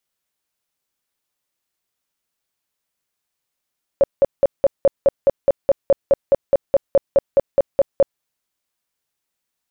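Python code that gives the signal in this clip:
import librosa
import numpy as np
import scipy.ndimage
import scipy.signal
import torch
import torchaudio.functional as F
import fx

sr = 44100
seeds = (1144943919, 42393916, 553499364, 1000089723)

y = fx.tone_burst(sr, hz=554.0, cycles=15, every_s=0.21, bursts=20, level_db=-8.5)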